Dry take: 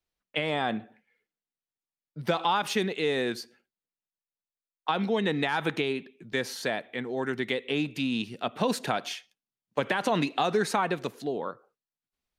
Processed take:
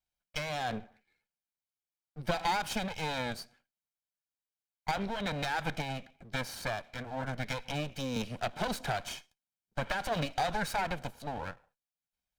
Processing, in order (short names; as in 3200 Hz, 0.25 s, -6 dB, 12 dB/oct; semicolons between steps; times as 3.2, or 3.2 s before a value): minimum comb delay 1.3 ms; 8.16–9.02 three-band squash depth 70%; gain -3 dB